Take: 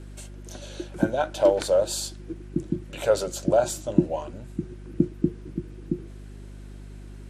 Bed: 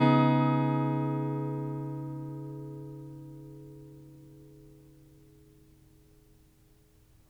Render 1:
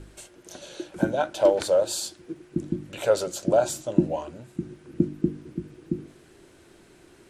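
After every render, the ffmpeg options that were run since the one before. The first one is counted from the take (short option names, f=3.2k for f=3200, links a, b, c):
-af "bandreject=f=50:t=h:w=4,bandreject=f=100:t=h:w=4,bandreject=f=150:t=h:w=4,bandreject=f=200:t=h:w=4,bandreject=f=250:t=h:w=4,bandreject=f=300:t=h:w=4"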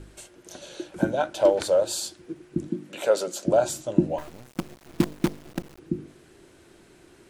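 -filter_complex "[0:a]asettb=1/sr,asplit=3[a][b][c];[a]atrim=end=2.684[d];[b]atrim=start=2.68:end=3.46,asetpts=PTS-STARTPTS,afade=t=in:d=0.004:c=qsin,afade=t=out:st=0.776:d=0.004:c=qsin,highpass=f=180:w=0.5412,highpass=f=180:w=1.3066[e];[c]atrim=start=3.456[f];[d][e]acrossfade=d=0.004:c1=hsin:c2=qsin[g];[g][f]acrossfade=d=0.004:c1=qsin:c2=hsin,asettb=1/sr,asplit=3[h][i][j];[h]atrim=end=4.184[k];[i]atrim=start=4.18:end=5.79,asetpts=PTS-STARTPTS,afade=t=in:d=0.004:c=qsin,afade=t=out:st=1.606:d=0.004:c=qsin,acrusher=bits=5:dc=4:mix=0:aa=0.000001[l];[j]atrim=start=5.786[m];[k][l]acrossfade=d=0.004:c1=hsin:c2=qsin[n];[n][m]acrossfade=d=0.004:c1=qsin:c2=hsin"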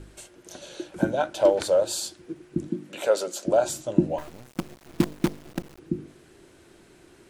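-filter_complex "[0:a]asettb=1/sr,asplit=3[a][b][c];[a]atrim=end=3.074[d];[b]atrim=start=3.07:end=3.67,asetpts=PTS-STARTPTS,afade=t=in:d=0.004:c=qsin,afade=t=out:st=0.596:d=0.004:c=qsin,equalizer=f=130:t=o:w=1.6:g=-6.5[e];[c]atrim=start=3.666[f];[d][e]acrossfade=d=0.004:c1=hsin:c2=qsin[g];[g][f]acrossfade=d=0.004:c1=qsin:c2=hsin"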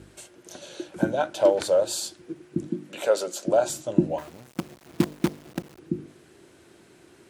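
-af "highpass=82"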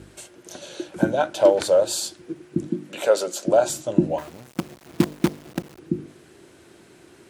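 -af "volume=3.5dB,alimiter=limit=-3dB:level=0:latency=1"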